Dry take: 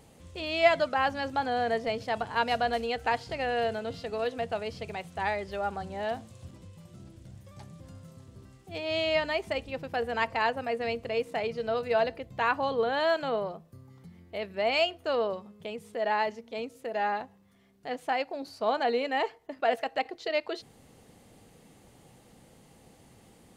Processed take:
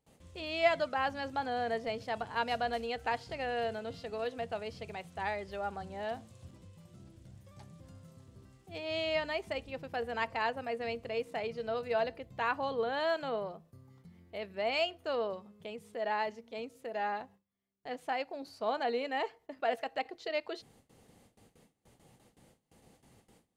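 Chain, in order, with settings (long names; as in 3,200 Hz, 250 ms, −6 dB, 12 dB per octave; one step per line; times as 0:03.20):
noise gate with hold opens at −46 dBFS
level −5.5 dB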